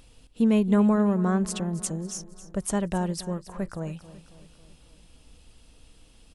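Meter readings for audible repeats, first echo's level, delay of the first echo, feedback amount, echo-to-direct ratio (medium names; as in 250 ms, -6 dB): 4, -16.0 dB, 273 ms, 54%, -14.5 dB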